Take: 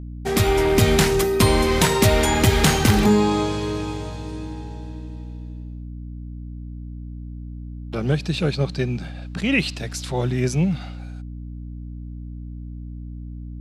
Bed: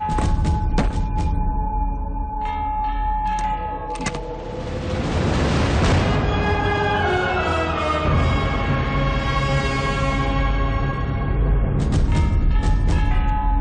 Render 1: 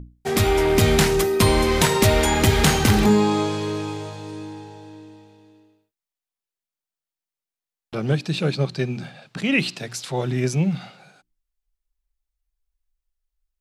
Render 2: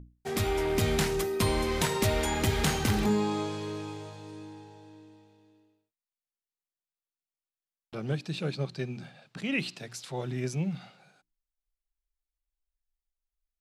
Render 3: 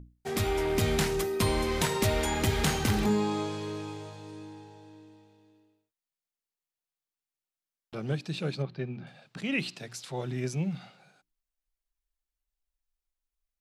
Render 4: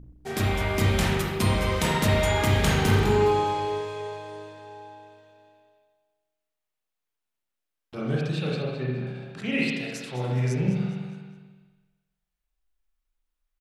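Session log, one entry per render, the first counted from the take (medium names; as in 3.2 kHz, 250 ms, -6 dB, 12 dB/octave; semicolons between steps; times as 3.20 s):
hum notches 60/120/180/240/300/360 Hz
trim -10 dB
8.62–9.07 s: distance through air 290 m
feedback delay 207 ms, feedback 41%, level -13 dB; spring tank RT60 1.1 s, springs 31/40 ms, chirp 40 ms, DRR -4 dB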